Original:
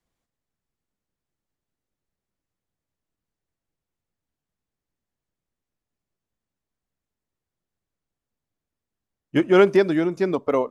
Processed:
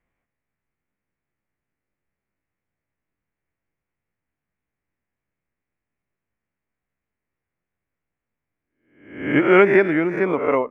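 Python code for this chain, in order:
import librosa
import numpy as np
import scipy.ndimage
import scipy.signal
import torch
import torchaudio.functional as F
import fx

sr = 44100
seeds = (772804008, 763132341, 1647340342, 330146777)

y = fx.spec_swells(x, sr, rise_s=0.59)
y = fx.high_shelf_res(y, sr, hz=3100.0, db=-12.0, q=3.0)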